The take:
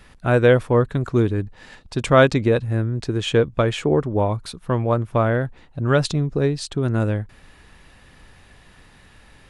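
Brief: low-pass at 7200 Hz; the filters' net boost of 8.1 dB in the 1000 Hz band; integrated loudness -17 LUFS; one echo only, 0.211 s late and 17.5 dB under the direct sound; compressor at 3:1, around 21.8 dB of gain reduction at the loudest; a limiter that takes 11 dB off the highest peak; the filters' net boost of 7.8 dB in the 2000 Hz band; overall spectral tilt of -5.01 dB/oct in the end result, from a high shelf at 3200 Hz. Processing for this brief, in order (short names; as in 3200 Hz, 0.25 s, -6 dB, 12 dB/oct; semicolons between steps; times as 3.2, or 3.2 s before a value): LPF 7200 Hz; bell 1000 Hz +8.5 dB; bell 2000 Hz +9 dB; high shelf 3200 Hz -6.5 dB; compressor 3:1, threshold -34 dBFS; limiter -27 dBFS; echo 0.211 s -17.5 dB; gain +21 dB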